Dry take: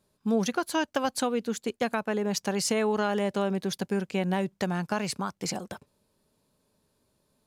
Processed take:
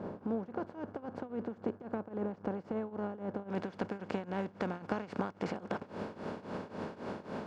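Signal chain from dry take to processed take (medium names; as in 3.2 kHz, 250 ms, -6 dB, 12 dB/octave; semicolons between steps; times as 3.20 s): spectral levelling over time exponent 0.4; compression 6:1, threshold -31 dBFS, peak gain reduction 13 dB; Bessel low-pass 690 Hz, order 2, from 3.48 s 1.6 kHz; mains buzz 100 Hz, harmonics 17, -55 dBFS -5 dB/octave; tremolo triangle 3.7 Hz, depth 90%; trim +2 dB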